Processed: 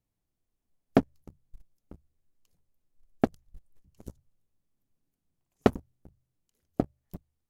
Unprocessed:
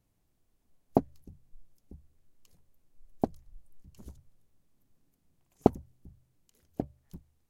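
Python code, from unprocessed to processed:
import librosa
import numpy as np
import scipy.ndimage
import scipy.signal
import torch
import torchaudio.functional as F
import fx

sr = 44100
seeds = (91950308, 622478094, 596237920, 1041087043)

y = fx.leveller(x, sr, passes=3)
y = y * librosa.db_to_amplitude(-3.5)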